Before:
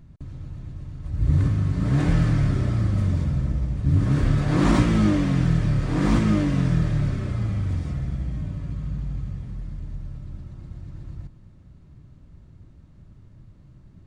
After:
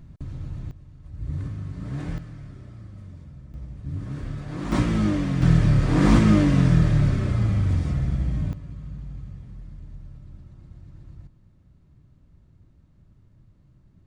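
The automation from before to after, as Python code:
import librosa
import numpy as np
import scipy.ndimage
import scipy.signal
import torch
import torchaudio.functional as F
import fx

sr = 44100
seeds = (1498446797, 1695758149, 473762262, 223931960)

y = fx.gain(x, sr, db=fx.steps((0.0, 2.5), (0.71, -10.5), (2.18, -19.5), (3.54, -12.0), (4.72, -3.0), (5.42, 3.5), (8.53, -7.0)))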